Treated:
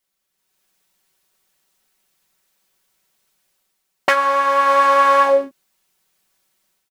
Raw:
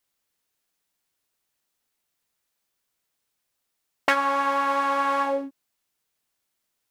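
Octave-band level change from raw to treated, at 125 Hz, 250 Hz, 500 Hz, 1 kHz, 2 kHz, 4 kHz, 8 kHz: n/a, -1.0 dB, +11.0 dB, +9.0 dB, +7.5 dB, +7.0 dB, +7.5 dB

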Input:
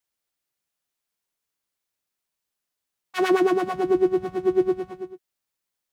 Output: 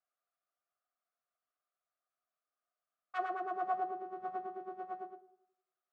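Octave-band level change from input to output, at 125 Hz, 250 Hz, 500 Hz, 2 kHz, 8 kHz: under -25 dB, -27.0 dB, -23.0 dB, -14.5 dB, n/a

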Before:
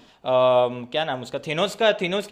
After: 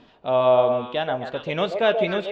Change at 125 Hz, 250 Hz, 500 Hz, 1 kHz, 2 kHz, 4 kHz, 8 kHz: 0.0 dB, 0.0 dB, +1.0 dB, 0.0 dB, -1.5 dB, -4.0 dB, under -15 dB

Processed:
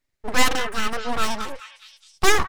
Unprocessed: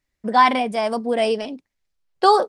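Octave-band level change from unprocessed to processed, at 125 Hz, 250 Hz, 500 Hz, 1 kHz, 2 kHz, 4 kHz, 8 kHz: n/a, -5.5 dB, -8.0 dB, -8.0 dB, +3.0 dB, +2.5 dB, +14.5 dB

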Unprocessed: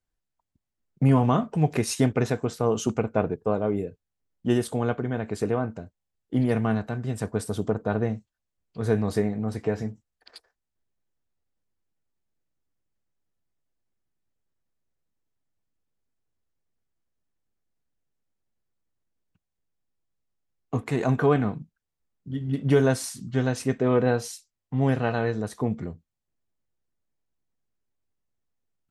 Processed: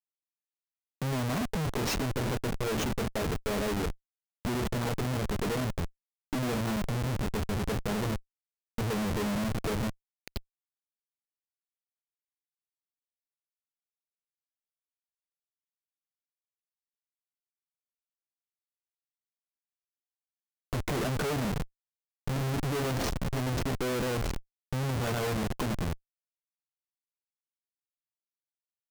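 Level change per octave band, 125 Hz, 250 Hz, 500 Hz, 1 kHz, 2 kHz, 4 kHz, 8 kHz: -5.5, -7.0, -8.0, -4.5, -2.0, +3.0, -2.0 dB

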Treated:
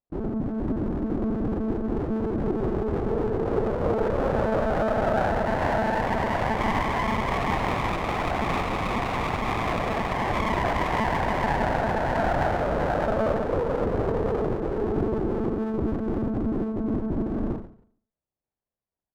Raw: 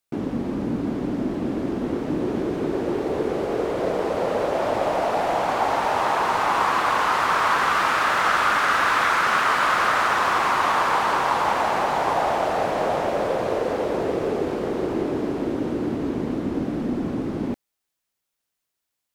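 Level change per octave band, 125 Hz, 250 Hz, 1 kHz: +5.5, -0.5, -6.0 dB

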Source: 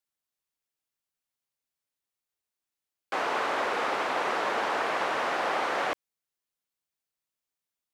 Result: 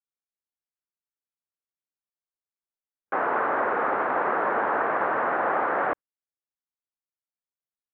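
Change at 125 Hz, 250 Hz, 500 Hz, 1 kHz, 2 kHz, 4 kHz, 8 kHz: +5.0 dB, +4.5 dB, +4.0 dB, +4.5 dB, +2.5 dB, under -15 dB, under -30 dB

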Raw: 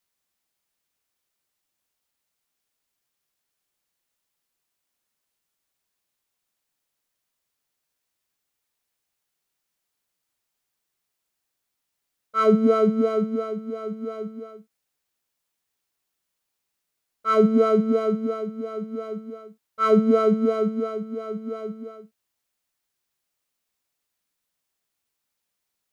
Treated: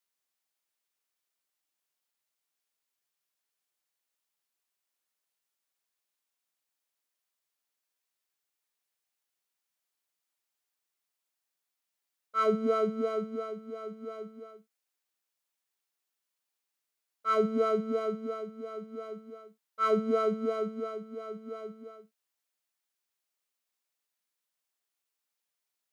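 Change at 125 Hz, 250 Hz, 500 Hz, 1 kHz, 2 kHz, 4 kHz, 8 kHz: under -10 dB, -12.5 dB, -8.5 dB, -6.0 dB, -6.0 dB, -5.5 dB, n/a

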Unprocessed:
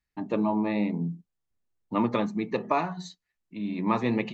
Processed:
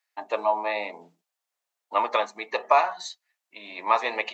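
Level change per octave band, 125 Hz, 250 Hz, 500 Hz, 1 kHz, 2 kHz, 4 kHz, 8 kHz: under -25 dB, -19.0 dB, +3.5 dB, +7.5 dB, +7.5 dB, +7.5 dB, n/a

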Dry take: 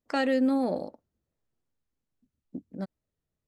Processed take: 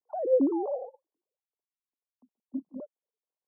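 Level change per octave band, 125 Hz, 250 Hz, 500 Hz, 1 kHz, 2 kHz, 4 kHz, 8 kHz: under -15 dB, -3.5 dB, +2.5 dB, -4.0 dB, under -35 dB, under -40 dB, n/a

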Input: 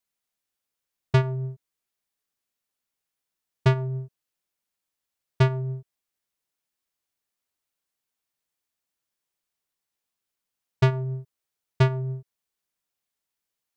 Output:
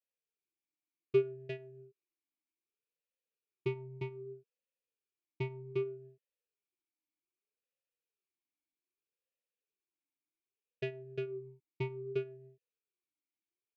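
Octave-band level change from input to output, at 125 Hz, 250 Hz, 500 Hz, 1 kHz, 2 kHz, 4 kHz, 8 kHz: -20.0 dB, -11.0 dB, -4.0 dB, -19.5 dB, -13.0 dB, -15.5 dB, n/a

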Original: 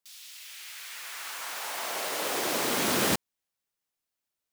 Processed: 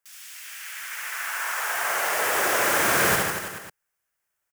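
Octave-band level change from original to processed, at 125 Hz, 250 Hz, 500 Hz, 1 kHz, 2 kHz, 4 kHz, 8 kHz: +4.0, -0.5, +5.0, +8.0, +11.0, +1.5, +5.5 dB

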